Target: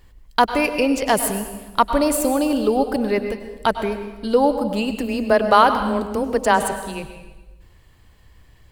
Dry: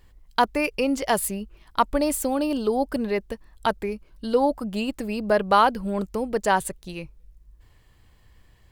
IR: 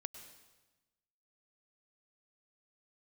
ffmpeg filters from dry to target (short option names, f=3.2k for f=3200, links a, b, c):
-filter_complex "[0:a]asplit=3[a][b][c];[a]afade=t=out:st=4.89:d=0.02[d];[b]afreqshift=15,afade=t=in:st=4.89:d=0.02,afade=t=out:st=7.02:d=0.02[e];[c]afade=t=in:st=7.02:d=0.02[f];[d][e][f]amix=inputs=3:normalize=0[g];[1:a]atrim=start_sample=2205[h];[g][h]afir=irnorm=-1:irlink=0,volume=8dB"